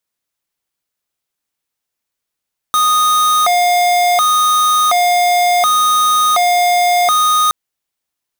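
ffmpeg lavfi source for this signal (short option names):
-f lavfi -i "aevalsrc='0.251*(2*lt(mod((974.5*t+265.5/0.69*(0.5-abs(mod(0.69*t,1)-0.5))),1),0.5)-1)':d=4.77:s=44100"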